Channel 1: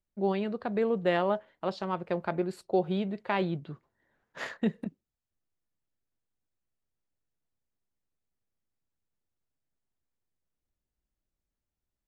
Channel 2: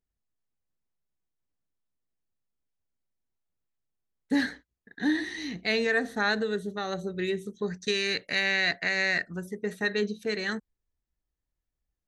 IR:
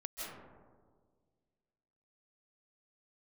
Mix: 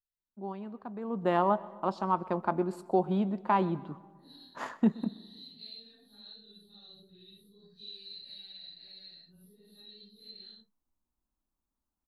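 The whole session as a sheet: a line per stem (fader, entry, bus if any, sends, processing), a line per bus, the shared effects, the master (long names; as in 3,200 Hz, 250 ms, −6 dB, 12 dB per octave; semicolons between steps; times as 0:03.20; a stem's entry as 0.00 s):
0:01.02 −12.5 dB → 0:01.25 −1 dB, 0.20 s, send −22.5 dB, echo send −21 dB, octave-band graphic EQ 125/250/500/1,000/2,000/4,000 Hz −6/+8/−6/+11/−8/−6 dB
−18.0 dB, 0.00 s, no send, no echo send, random phases in long frames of 200 ms; downward compressor 6 to 1, threshold −31 dBFS, peak gain reduction 10 dB; drawn EQ curve 120 Hz 0 dB, 2,100 Hz −21 dB, 4,100 Hz +14 dB, 6,800 Hz −27 dB, 11,000 Hz +12 dB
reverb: on, RT60 1.7 s, pre-delay 120 ms
echo: repeating echo 126 ms, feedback 40%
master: no processing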